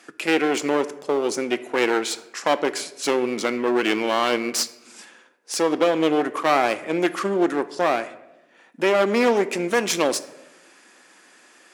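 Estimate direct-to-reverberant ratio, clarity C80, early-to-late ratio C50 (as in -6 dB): 12.0 dB, 17.5 dB, 15.5 dB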